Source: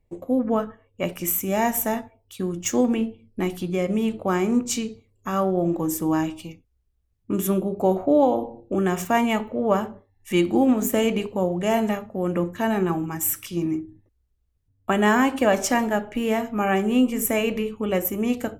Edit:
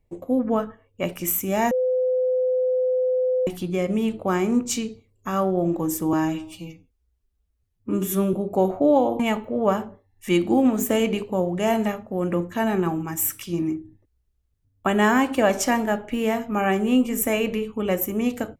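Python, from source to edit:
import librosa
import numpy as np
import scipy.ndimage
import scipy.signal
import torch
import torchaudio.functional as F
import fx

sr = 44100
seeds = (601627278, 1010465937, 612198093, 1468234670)

y = fx.edit(x, sr, fx.bleep(start_s=1.71, length_s=1.76, hz=509.0, db=-18.5),
    fx.stretch_span(start_s=6.13, length_s=1.47, factor=1.5),
    fx.cut(start_s=8.46, length_s=0.77), tone=tone)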